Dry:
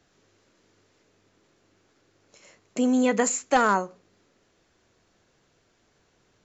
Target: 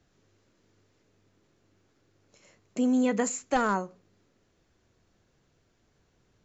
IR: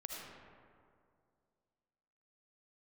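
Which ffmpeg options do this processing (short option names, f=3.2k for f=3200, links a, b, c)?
-af "lowshelf=f=220:g=10,volume=-6.5dB"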